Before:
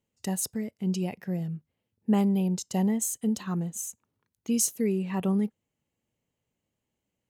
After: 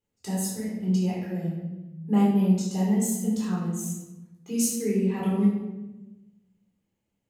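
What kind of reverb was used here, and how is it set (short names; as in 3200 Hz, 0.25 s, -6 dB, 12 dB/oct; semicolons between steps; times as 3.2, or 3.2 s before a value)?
shoebox room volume 490 m³, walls mixed, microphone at 4 m; gain -8.5 dB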